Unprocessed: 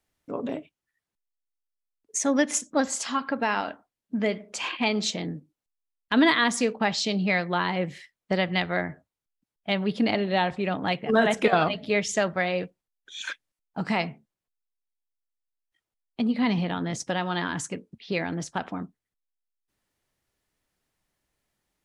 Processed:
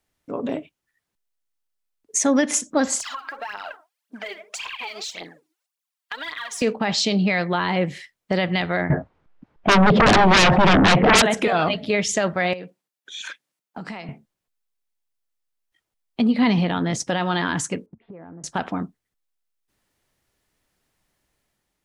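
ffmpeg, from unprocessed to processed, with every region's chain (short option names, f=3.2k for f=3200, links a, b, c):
-filter_complex "[0:a]asettb=1/sr,asplit=3[a][b][c];[a]atrim=end=3.004[d];[b]atrim=start=3:end=6.62,asetpts=PTS-STARTPTS,afade=t=in:d=0.004:c=qsin,afade=t=out:st=3.616:d=0.004:c=qsin,highpass=790,aphaser=in_gain=1:out_gain=1:delay=3.3:decay=0.74:speed=1.8:type=triangular,acompressor=threshold=-35dB:ratio=10:attack=3.2:release=140:knee=1:detection=peak[e];[c]atrim=start=6.616[f];[d][e]acrossfade=d=0.004:c1=hsin:c2=qsin[g];[g][f]acrossfade=d=0.004:c1=qsin:c2=hsin,asettb=1/sr,asplit=3[h][i][j];[h]atrim=end=8.904[k];[i]atrim=start=8.9:end=11.22,asetpts=PTS-STARTPTS,afade=t=in:d=0.004:c=qsin,afade=t=out:st=2.316:d=0.004:c=qsin,lowpass=1.4k,aeval=exprs='0.355*sin(PI/2*10*val(0)/0.355)':c=same[l];[j]atrim=start=11.216[m];[k][l]acrossfade=d=0.004:c1=hsin:c2=qsin[n];[n][m]acrossfade=d=0.004:c1=qsin:c2=hsin,asettb=1/sr,asplit=3[o][p][q];[o]atrim=end=12.534[r];[p]atrim=start=12.53:end=14.09,asetpts=PTS-STARTPTS,afade=t=in:d=0.004:c=qsin,afade=t=out:st=1.556:d=0.004:c=qsin,highpass=f=150:w=0.5412,highpass=f=150:w=1.3066,acompressor=threshold=-36dB:ratio=12:attack=3.2:release=140:knee=1:detection=peak,aeval=exprs='0.0422*(abs(mod(val(0)/0.0422+3,4)-2)-1)':c=same[s];[q]atrim=start=14.086[t];[r][s]acrossfade=d=0.004:c1=hsin:c2=qsin[u];[u][t]acrossfade=d=0.004:c1=qsin:c2=hsin,asettb=1/sr,asplit=3[v][w][x];[v]atrim=end=17.864[y];[w]atrim=start=17.86:end=18.44,asetpts=PTS-STARTPTS,afade=t=in:d=0.004:c=qsin,afade=t=out:st=0.576:d=0.004:c=qsin,lowpass=f=1.3k:w=0.5412,lowpass=f=1.3k:w=1.3066,acompressor=threshold=-44dB:ratio=8:attack=3.2:release=140:knee=1:detection=peak[z];[x]atrim=start=18.436[aa];[y][z]acrossfade=d=0.004:c1=hsin:c2=qsin[ab];[ab][aa]acrossfade=d=0.004:c1=qsin:c2=hsin,alimiter=limit=-17dB:level=0:latency=1:release=14,dynaudnorm=f=110:g=9:m=4dB,volume=2.5dB"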